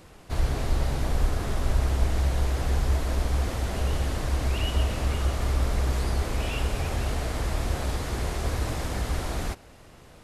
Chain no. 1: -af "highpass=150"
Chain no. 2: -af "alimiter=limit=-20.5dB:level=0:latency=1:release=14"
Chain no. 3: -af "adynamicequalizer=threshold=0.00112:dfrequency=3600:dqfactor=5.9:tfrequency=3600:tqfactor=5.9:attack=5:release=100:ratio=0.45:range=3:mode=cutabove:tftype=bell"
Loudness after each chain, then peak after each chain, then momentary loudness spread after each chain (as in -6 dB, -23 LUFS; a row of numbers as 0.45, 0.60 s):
-33.5, -30.5, -28.5 LUFS; -20.0, -20.5, -11.0 dBFS; 2, 2, 4 LU